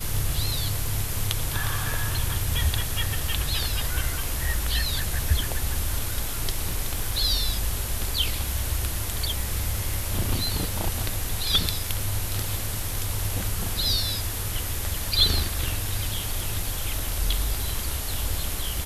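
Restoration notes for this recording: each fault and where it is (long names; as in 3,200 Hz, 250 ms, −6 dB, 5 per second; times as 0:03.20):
surface crackle 30 per second −31 dBFS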